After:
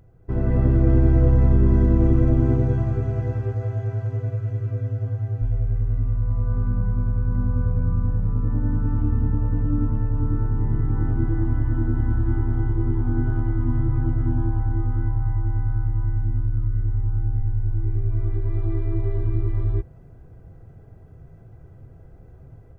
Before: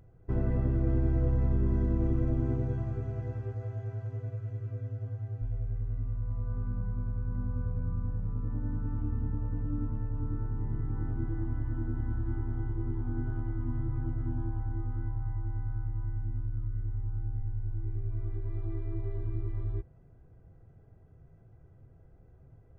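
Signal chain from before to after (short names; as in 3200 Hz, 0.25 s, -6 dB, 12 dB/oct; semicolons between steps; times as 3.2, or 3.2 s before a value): AGC gain up to 7 dB; gain +4 dB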